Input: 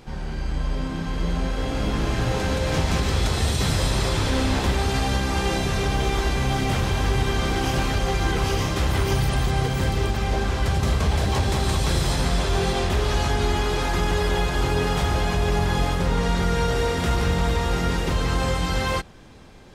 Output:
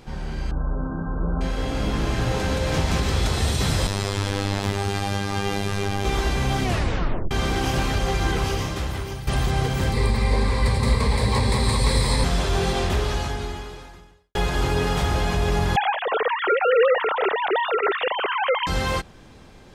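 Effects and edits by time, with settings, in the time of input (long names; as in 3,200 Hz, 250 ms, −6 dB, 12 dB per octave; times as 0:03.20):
0:00.51–0:01.41: linear-phase brick-wall low-pass 1,600 Hz
0:03.87–0:06.05: phases set to zero 99.7 Hz
0:06.64: tape stop 0.67 s
0:08.33–0:09.27: fade out, to −14 dB
0:09.93–0:12.24: EQ curve with evenly spaced ripples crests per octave 0.95, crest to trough 12 dB
0:12.95–0:14.35: fade out quadratic
0:15.76–0:18.67: three sine waves on the formant tracks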